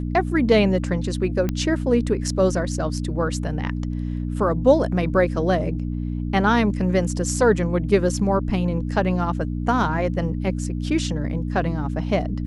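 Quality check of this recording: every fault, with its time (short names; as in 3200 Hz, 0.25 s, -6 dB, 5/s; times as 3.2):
hum 60 Hz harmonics 5 -26 dBFS
1.49 pop -11 dBFS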